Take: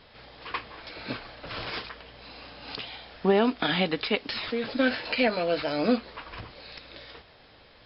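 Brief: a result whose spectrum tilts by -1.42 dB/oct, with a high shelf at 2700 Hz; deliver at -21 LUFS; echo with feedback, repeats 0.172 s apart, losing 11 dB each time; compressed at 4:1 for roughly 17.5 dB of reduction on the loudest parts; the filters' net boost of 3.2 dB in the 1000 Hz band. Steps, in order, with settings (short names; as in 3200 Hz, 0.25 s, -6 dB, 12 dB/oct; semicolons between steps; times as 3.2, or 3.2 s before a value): bell 1000 Hz +3.5 dB; high shelf 2700 Hz +6.5 dB; compressor 4:1, threshold -39 dBFS; feedback echo 0.172 s, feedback 28%, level -11 dB; gain +19 dB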